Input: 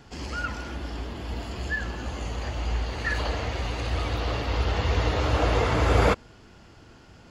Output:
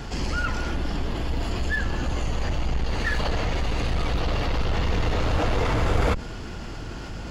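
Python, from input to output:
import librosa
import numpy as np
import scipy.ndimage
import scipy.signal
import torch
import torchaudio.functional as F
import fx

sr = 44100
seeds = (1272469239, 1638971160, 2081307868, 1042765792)

p1 = fx.octave_divider(x, sr, octaves=2, level_db=2.0)
p2 = 10.0 ** (-23.5 / 20.0) * (np.abs((p1 / 10.0 ** (-23.5 / 20.0) + 3.0) % 4.0 - 2.0) - 1.0)
p3 = p1 + (p2 * librosa.db_to_amplitude(-7.0))
p4 = fx.env_flatten(p3, sr, amount_pct=50)
y = p4 * librosa.db_to_amplitude(-5.0)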